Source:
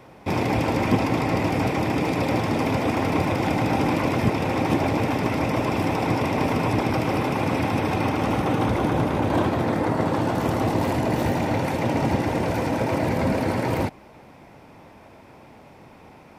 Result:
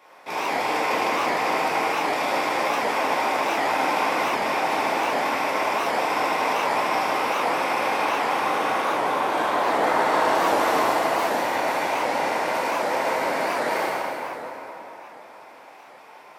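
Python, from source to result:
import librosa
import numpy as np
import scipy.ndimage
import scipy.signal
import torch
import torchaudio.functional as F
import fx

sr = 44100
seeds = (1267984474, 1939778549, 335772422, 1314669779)

y = scipy.signal.sosfilt(scipy.signal.butter(2, 700.0, 'highpass', fs=sr, output='sos'), x)
y = fx.leveller(y, sr, passes=1, at=(9.64, 10.82))
y = fx.rev_plate(y, sr, seeds[0], rt60_s=3.7, hf_ratio=0.6, predelay_ms=0, drr_db=-8.5)
y = fx.record_warp(y, sr, rpm=78.0, depth_cents=160.0)
y = F.gain(torch.from_numpy(y), -3.5).numpy()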